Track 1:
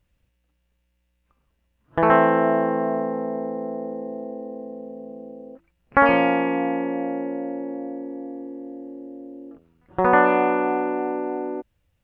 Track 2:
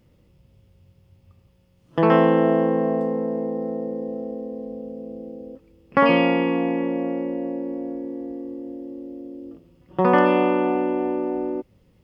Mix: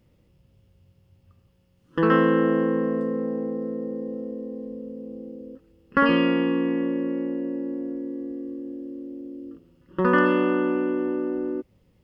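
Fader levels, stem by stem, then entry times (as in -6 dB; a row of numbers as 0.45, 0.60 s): -7.5, -3.5 dB; 0.00, 0.00 s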